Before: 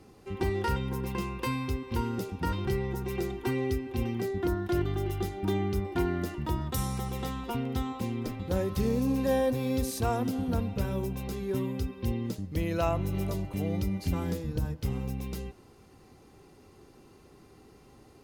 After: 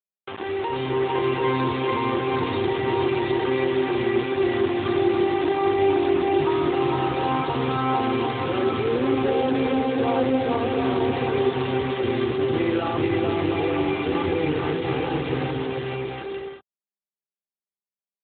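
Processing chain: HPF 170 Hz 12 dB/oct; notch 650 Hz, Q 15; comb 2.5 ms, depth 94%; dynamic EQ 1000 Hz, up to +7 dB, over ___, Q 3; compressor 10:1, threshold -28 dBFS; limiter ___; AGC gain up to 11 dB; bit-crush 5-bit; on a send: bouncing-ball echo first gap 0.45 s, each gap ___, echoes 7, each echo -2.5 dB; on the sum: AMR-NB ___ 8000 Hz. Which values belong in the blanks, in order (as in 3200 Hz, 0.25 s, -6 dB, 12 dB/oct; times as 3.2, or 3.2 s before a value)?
-51 dBFS, -28.5 dBFS, 0.6×, 12.2 kbps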